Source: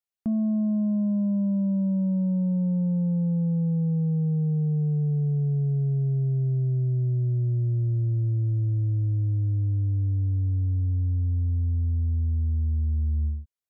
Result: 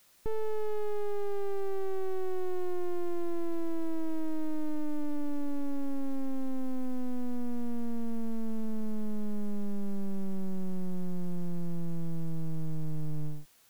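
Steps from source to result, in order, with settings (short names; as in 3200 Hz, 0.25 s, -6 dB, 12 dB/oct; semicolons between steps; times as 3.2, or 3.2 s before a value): full-wave rectifier; formant shift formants -4 st; requantised 10-bit, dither triangular; gain -2.5 dB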